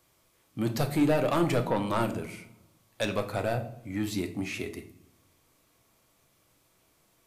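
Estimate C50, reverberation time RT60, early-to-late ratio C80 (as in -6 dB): 12.5 dB, 0.60 s, 17.0 dB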